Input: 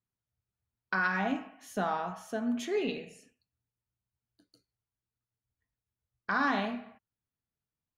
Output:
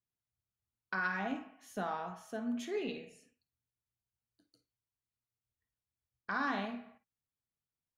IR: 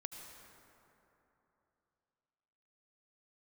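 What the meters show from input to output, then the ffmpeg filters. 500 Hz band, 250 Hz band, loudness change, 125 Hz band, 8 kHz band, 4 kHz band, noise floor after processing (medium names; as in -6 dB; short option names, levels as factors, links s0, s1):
-6.0 dB, -5.5 dB, -6.0 dB, -6.5 dB, -6.0 dB, -6.0 dB, under -85 dBFS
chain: -filter_complex "[1:a]atrim=start_sample=2205,atrim=end_sample=3969,asetrate=66150,aresample=44100[s0];[0:a][s0]afir=irnorm=-1:irlink=0,volume=1.26"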